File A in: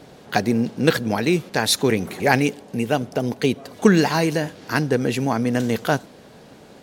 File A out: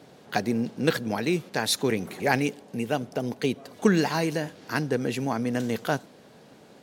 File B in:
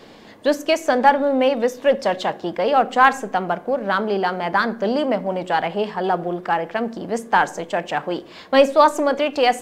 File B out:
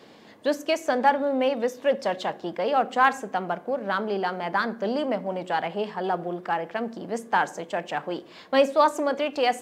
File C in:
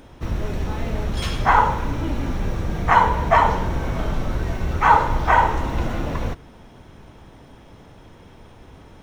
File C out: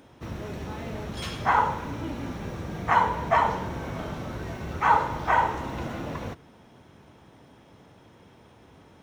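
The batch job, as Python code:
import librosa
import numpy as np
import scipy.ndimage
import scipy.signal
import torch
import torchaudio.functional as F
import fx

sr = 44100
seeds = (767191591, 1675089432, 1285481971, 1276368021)

y = scipy.signal.sosfilt(scipy.signal.butter(2, 99.0, 'highpass', fs=sr, output='sos'), x)
y = F.gain(torch.from_numpy(y), -6.0).numpy()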